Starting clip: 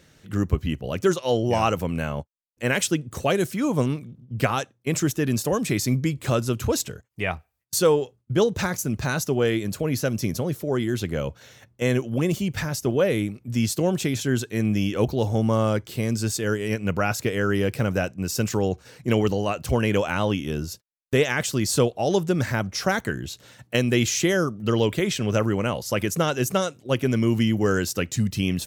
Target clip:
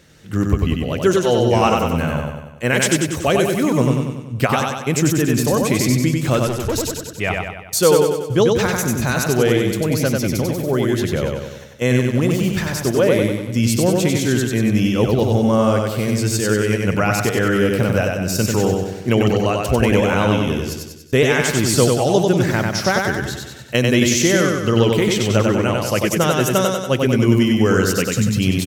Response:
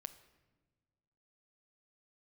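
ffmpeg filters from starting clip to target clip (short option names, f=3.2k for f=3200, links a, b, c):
-filter_complex "[0:a]aecho=1:1:95|190|285|380|475|570|665:0.708|0.382|0.206|0.111|0.0602|0.0325|0.0176,asettb=1/sr,asplit=3[a][b][c];[a]atrim=end=6.474[d];[b]atrim=start=6.47:end=7.06,asetpts=PTS-STARTPTS,afade=t=in:d=0.004:c=qsin,afade=t=out:st=0.586:d=0.004:c=qsin,aeval=exprs='(tanh(8.91*val(0)+0.4)-tanh(0.4))/8.91':c=same[e];[c]atrim=start=7.056[f];[d][e]acrossfade=d=0.004:c1=hsin:c2=qsin[g];[g][f]acrossfade=d=0.004:c1=qsin:c2=hsin,asettb=1/sr,asplit=3[h][i][j];[h]atrim=end=11.934[k];[i]atrim=start=11.93:end=13.52,asetpts=PTS-STARTPTS,afade=t=in:d=0.004:c=qsin,afade=t=out:st=1.586:d=0.004:c=qsin,aeval=exprs='sgn(val(0))*max(abs(val(0))-0.0075,0)':c=same[l];[j]atrim=start=13.516[m];[k][l]acrossfade=d=0.004:c1=hsin:c2=qsin[n];[n][m]acrossfade=d=0.004:c1=qsin:c2=hsin,volume=4.5dB"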